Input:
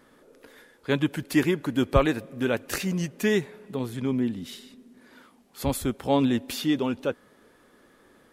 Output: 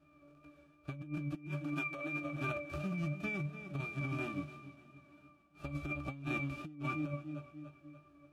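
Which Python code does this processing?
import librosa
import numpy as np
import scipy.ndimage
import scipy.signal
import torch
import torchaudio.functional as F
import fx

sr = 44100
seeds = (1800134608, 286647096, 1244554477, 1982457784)

y = fx.envelope_flatten(x, sr, power=0.3)
y = fx.highpass(y, sr, hz=fx.line((1.48, 740.0), (2.23, 260.0)), slope=12, at=(1.48, 2.23), fade=0.02)
y = fx.octave_resonator(y, sr, note='D', decay_s=0.25)
y = fx.echo_feedback(y, sr, ms=292, feedback_pct=49, wet_db=-17.0)
y = fx.vibrato(y, sr, rate_hz=2.9, depth_cents=25.0)
y = fx.doubler(y, sr, ms=21.0, db=-10.5)
y = fx.over_compress(y, sr, threshold_db=-45.0, ratio=-1.0)
y = y * librosa.db_to_amplitude(5.0)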